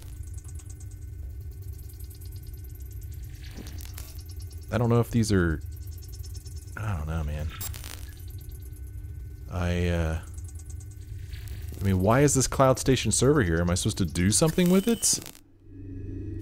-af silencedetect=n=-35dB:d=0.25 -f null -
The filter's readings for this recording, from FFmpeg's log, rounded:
silence_start: 15.39
silence_end: 15.79 | silence_duration: 0.40